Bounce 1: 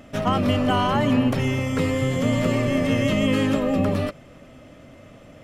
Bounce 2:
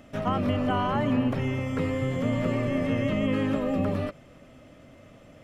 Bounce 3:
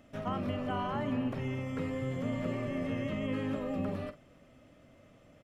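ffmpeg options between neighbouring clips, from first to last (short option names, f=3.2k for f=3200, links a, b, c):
-filter_complex "[0:a]acrossover=split=2700[a][b];[b]acompressor=threshold=-47dB:ratio=4:attack=1:release=60[c];[a][c]amix=inputs=2:normalize=0,volume=-5dB"
-filter_complex "[0:a]asplit=2[a][b];[b]adelay=46,volume=-12dB[c];[a][c]amix=inputs=2:normalize=0,volume=-8.5dB"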